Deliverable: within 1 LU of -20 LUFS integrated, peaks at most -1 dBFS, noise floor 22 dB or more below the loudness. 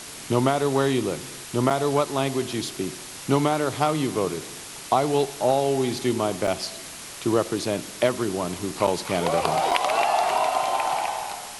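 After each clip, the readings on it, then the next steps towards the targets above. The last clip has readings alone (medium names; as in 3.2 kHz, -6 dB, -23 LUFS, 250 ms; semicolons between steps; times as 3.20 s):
dropouts 4; longest dropout 5.2 ms; noise floor -39 dBFS; noise floor target -47 dBFS; loudness -24.5 LUFS; peak level -4.5 dBFS; loudness target -20.0 LUFS
-> interpolate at 1.70/6.47/8.87/9.71 s, 5.2 ms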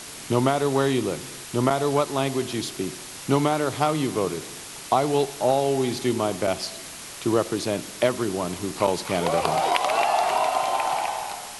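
dropouts 0; noise floor -39 dBFS; noise floor target -47 dBFS
-> noise reduction 8 dB, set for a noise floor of -39 dBFS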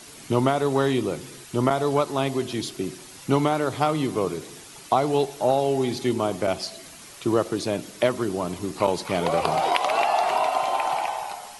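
noise floor -44 dBFS; noise floor target -47 dBFS
-> noise reduction 6 dB, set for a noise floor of -44 dBFS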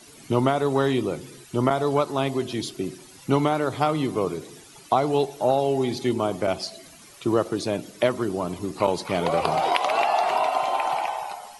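noise floor -48 dBFS; loudness -24.5 LUFS; peak level -4.5 dBFS; loudness target -20.0 LUFS
-> trim +4.5 dB; peak limiter -1 dBFS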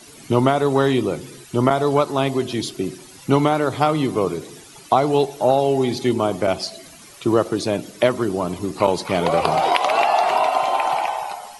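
loudness -20.0 LUFS; peak level -1.0 dBFS; noise floor -44 dBFS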